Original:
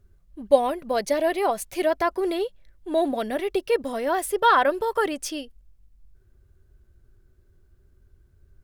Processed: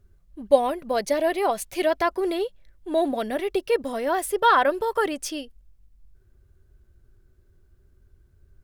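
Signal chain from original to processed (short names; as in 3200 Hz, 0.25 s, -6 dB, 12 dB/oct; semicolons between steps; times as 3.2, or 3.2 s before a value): 1.49–2.09 dynamic EQ 3300 Hz, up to +4 dB, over -42 dBFS, Q 1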